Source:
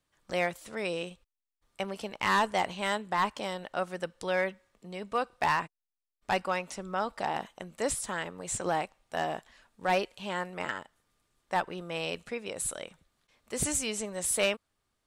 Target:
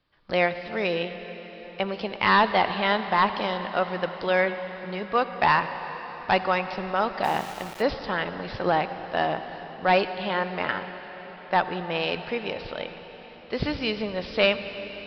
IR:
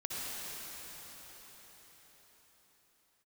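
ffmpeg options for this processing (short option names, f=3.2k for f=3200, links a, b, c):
-filter_complex "[0:a]aresample=11025,aresample=44100,asplit=2[a][b];[1:a]atrim=start_sample=2205[c];[b][c]afir=irnorm=-1:irlink=0,volume=-11.5dB[d];[a][d]amix=inputs=2:normalize=0,asplit=3[e][f][g];[e]afade=t=out:st=7.23:d=0.02[h];[f]aeval=exprs='val(0)*gte(abs(val(0)),0.00944)':c=same,afade=t=in:st=7.23:d=0.02,afade=t=out:st=7.81:d=0.02[i];[g]afade=t=in:st=7.81:d=0.02[j];[h][i][j]amix=inputs=3:normalize=0,volume=5.5dB"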